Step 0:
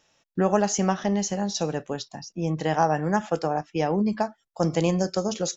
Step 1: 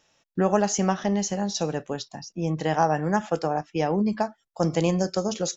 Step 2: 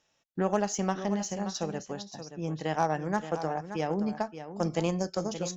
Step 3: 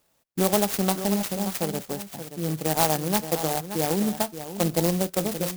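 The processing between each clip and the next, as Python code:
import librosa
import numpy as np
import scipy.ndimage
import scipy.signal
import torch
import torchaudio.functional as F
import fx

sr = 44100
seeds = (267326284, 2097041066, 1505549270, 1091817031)

y1 = x
y2 = fx.cheby_harmonics(y1, sr, harmonics=(7,), levels_db=(-30,), full_scale_db=-7.0)
y2 = y2 + 10.0 ** (-11.0 / 20.0) * np.pad(y2, (int(576 * sr / 1000.0), 0))[:len(y2)]
y2 = y2 * 10.0 ** (-5.5 / 20.0)
y3 = fx.clock_jitter(y2, sr, seeds[0], jitter_ms=0.14)
y3 = y3 * 10.0 ** (5.5 / 20.0)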